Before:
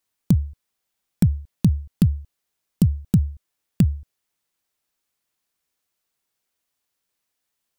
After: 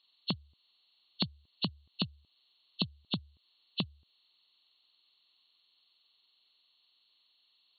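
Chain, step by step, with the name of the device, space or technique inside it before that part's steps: hearing aid with frequency lowering (nonlinear frequency compression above 2600 Hz 4:1; compressor 3:1, threshold -29 dBFS, peak gain reduction 12.5 dB; speaker cabinet 260–5300 Hz, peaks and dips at 510 Hz -6 dB, 1100 Hz +6 dB, 1600 Hz -7 dB, 2900 Hz +7 dB, 5200 Hz +9 dB)

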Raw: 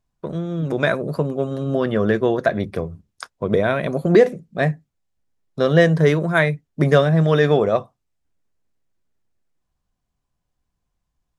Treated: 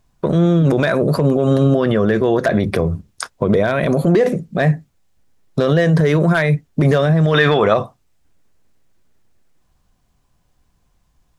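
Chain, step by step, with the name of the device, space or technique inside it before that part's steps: loud club master (compressor 2.5:1, threshold -17 dBFS, peak gain reduction 7 dB; hard clip -10.5 dBFS, distortion -27 dB; maximiser +20.5 dB); 7.34–7.74 band shelf 1900 Hz +9 dB 2.5 oct; gain -6 dB

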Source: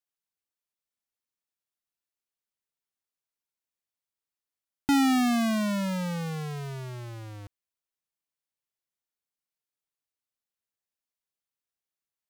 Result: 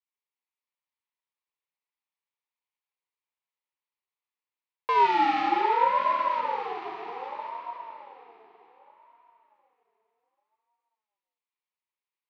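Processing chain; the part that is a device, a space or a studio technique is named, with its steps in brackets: 5.48–5.95 inverse Chebyshev band-stop 2100–5500 Hz; digital reverb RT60 4.5 s, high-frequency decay 0.8×, pre-delay 5 ms, DRR -3.5 dB; voice changer toy (ring modulator with a swept carrier 690 Hz, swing 20%, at 0.65 Hz; speaker cabinet 510–3800 Hz, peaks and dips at 650 Hz -9 dB, 960 Hz +7 dB, 1500 Hz -8 dB, 2300 Hz +3 dB, 3300 Hz -3 dB)

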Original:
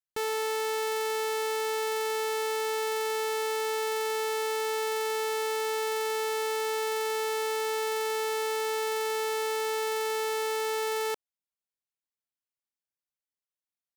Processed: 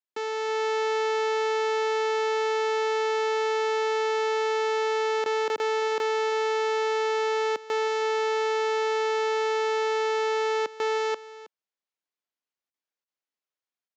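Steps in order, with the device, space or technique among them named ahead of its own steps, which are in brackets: call with lost packets (HPF 170 Hz 24 dB/oct; downsampling 16000 Hz; AGC gain up to 4 dB; packet loss bursts); HPF 150 Hz; HPF 210 Hz; high shelf 6800 Hz -12 dB; echo 0.319 s -17 dB

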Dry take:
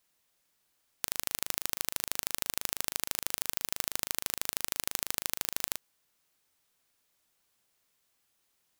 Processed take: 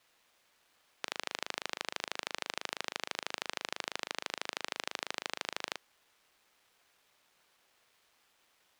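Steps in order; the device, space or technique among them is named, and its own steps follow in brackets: phone line with mismatched companding (BPF 400–3600 Hz; G.711 law mismatch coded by mu); gain +1.5 dB

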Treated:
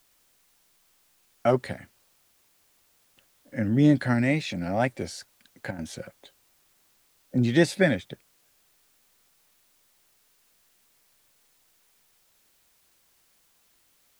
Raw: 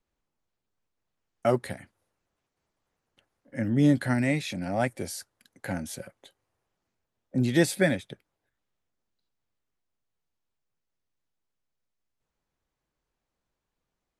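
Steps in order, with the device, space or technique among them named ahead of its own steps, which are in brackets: worn cassette (LPF 6200 Hz 12 dB/oct; wow and flutter; level dips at 5.71, 76 ms -10 dB; white noise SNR 35 dB); gain +2 dB

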